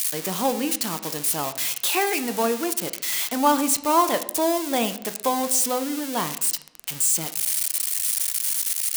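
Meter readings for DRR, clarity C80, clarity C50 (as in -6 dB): 9.5 dB, 16.5 dB, 14.0 dB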